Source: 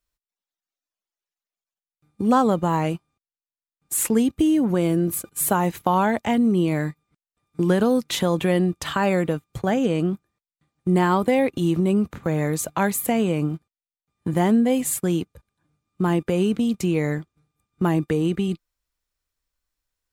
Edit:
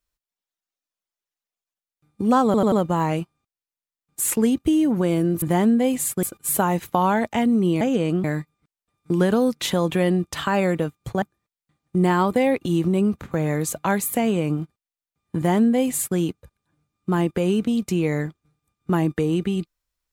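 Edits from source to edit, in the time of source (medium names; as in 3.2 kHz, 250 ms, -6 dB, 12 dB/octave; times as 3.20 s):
2.45 s: stutter 0.09 s, 4 plays
9.71–10.14 s: move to 6.73 s
14.28–15.09 s: copy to 5.15 s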